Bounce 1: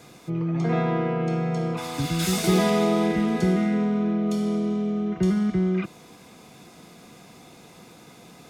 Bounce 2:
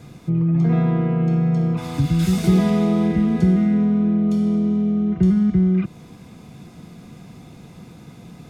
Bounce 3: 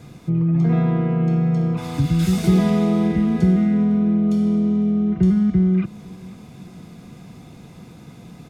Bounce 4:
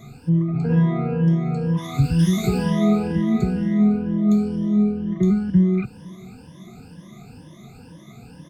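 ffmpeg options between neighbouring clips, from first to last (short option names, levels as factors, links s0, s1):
-filter_complex "[0:a]bass=f=250:g=15,treble=f=4000:g=-3,asplit=2[s0][s1];[s1]acompressor=threshold=0.0891:ratio=6,volume=0.891[s2];[s0][s2]amix=inputs=2:normalize=0,volume=0.501"
-af "aecho=1:1:504|1008|1512:0.0708|0.0283|0.0113"
-af "afftfilt=real='re*pow(10,22/40*sin(2*PI*(1.2*log(max(b,1)*sr/1024/100)/log(2)-(2.1)*(pts-256)/sr)))':imag='im*pow(10,22/40*sin(2*PI*(1.2*log(max(b,1)*sr/1024/100)/log(2)-(2.1)*(pts-256)/sr)))':win_size=1024:overlap=0.75,volume=0.531"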